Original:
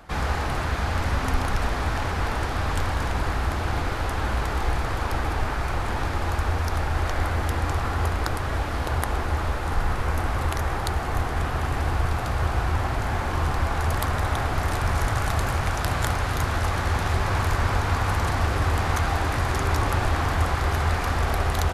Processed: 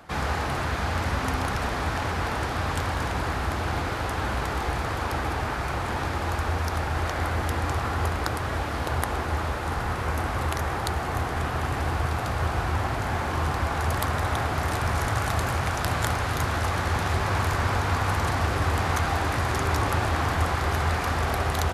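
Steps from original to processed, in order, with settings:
high-pass filter 73 Hz

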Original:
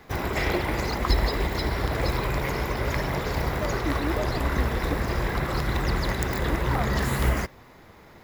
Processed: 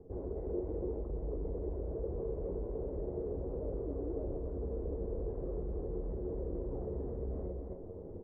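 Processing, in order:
tuned comb filter 91 Hz, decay 0.2 s, harmonics all, mix 60%
reversed playback
downward compressor 8 to 1, threshold −41 dBFS, peak gain reduction 19.5 dB
reversed playback
low-shelf EQ 100 Hz +9.5 dB
loudspeakers that aren't time-aligned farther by 19 metres −9 dB, 92 metres −5 dB
dynamic equaliser 130 Hz, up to −8 dB, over −53 dBFS, Q 0.75
in parallel at −6 dB: wrap-around overflow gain 34.5 dB
on the sum: transistor ladder low-pass 510 Hz, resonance 60%
level +10 dB

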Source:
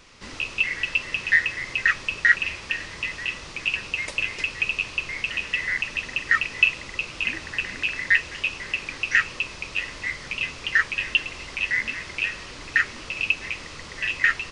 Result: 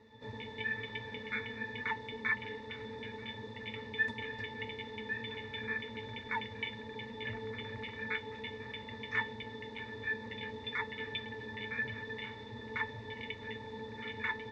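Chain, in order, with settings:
ring modulation 360 Hz
resonances in every octave A, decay 0.14 s
level +10.5 dB

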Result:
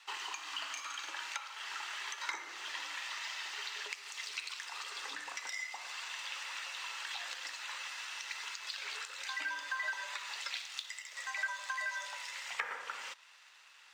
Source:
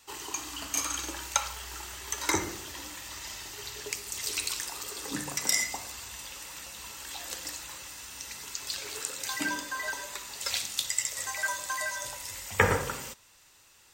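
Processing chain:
downward compressor 6 to 1, threshold −41 dBFS, peak gain reduction 22 dB
low-pass filter 3,200 Hz 12 dB per octave
leveller curve on the samples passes 1
high-pass filter 1,200 Hz 12 dB per octave
level +5.5 dB

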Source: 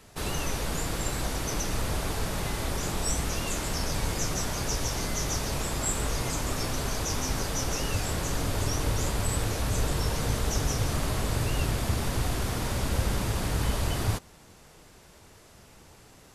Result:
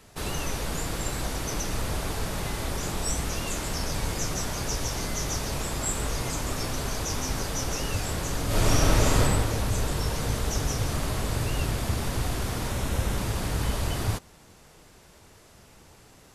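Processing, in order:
0:08.46–0:09.20: thrown reverb, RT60 1.8 s, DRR −7.5 dB
0:12.69–0:13.18: notch filter 4,700 Hz, Q 10

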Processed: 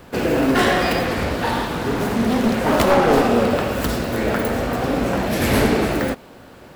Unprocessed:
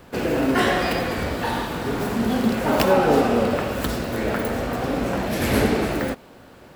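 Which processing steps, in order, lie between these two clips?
wavefolder on the positive side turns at −14.5 dBFS
0:01.05–0:03.13: highs frequency-modulated by the lows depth 0.4 ms
level +3.5 dB

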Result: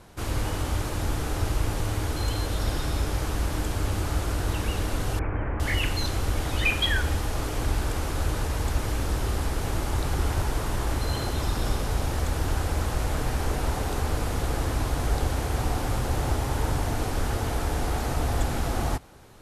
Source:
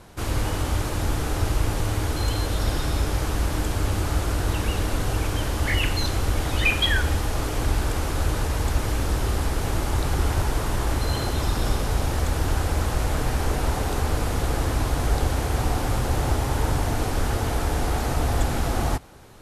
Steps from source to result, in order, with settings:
0:05.19–0:05.60: Butterworth low-pass 2,300 Hz 48 dB per octave
level −3 dB

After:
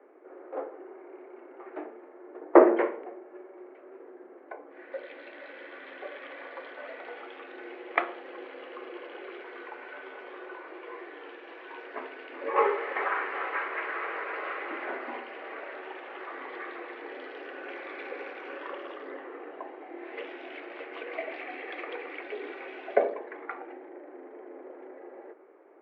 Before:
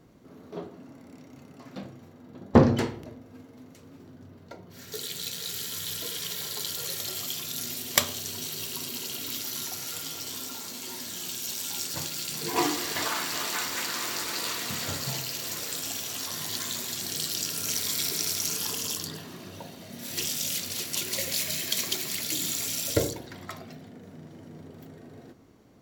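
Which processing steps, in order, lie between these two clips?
single-sideband voice off tune +110 Hz 220–2,100 Hz
level +3 dB

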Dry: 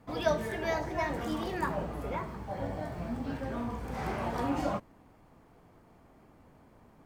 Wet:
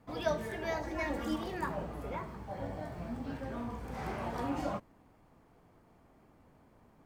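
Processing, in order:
0:00.83–0:01.36: comb filter 3.6 ms, depth 84%
level −4 dB

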